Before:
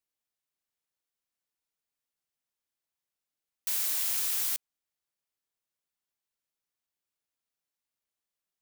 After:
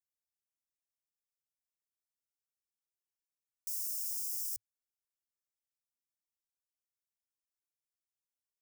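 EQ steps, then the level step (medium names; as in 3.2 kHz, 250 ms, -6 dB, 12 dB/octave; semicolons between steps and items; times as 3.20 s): Chebyshev band-stop 110–5100 Hz, order 5; -7.0 dB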